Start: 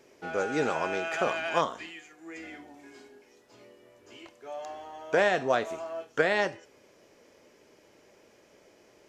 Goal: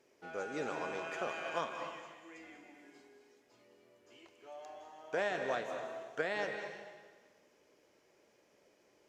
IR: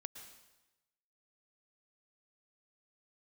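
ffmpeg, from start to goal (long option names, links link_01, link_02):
-filter_complex "[0:a]lowshelf=frequency=140:gain=-5[link_01];[1:a]atrim=start_sample=2205,asetrate=29988,aresample=44100[link_02];[link_01][link_02]afir=irnorm=-1:irlink=0,volume=-7.5dB"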